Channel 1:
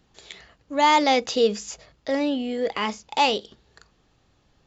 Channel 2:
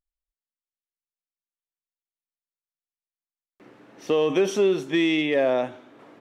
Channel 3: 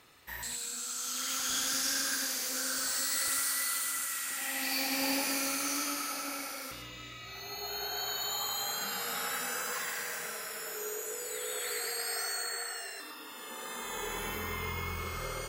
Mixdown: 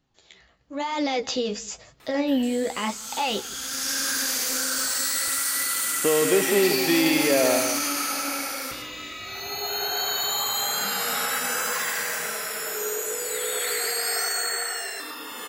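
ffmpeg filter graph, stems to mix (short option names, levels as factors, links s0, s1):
-filter_complex "[0:a]bandreject=f=430:w=12,alimiter=limit=0.119:level=0:latency=1:release=19,flanger=delay=7.1:depth=9.7:regen=36:speed=1:shape=sinusoidal,volume=0.501,asplit=3[s0][s1][s2];[s1]volume=0.0708[s3];[1:a]adelay=1950,volume=0.266,asplit=2[s4][s5];[s5]volume=0.447[s6];[2:a]alimiter=level_in=1.26:limit=0.0631:level=0:latency=1:release=16,volume=0.794,bandreject=f=60:t=h:w=6,bandreject=f=120:t=h:w=6,bandreject=f=180:t=h:w=6,adelay=2000,volume=0.841[s7];[s2]apad=whole_len=771168[s8];[s7][s8]sidechaincompress=threshold=0.00355:ratio=4:attack=35:release=568[s9];[s3][s6]amix=inputs=2:normalize=0,aecho=0:1:170:1[s10];[s0][s4][s9][s10]amix=inputs=4:normalize=0,dynaudnorm=f=120:g=13:m=3.55"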